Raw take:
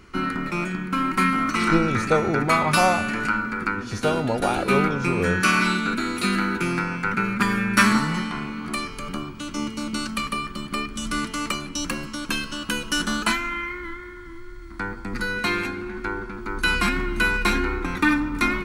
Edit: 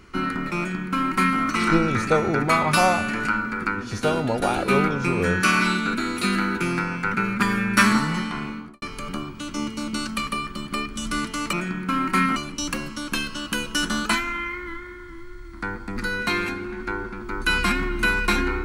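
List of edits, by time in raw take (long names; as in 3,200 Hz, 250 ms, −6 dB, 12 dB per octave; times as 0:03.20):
0:00.57–0:01.40: duplicate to 0:11.53
0:08.48–0:08.82: fade out and dull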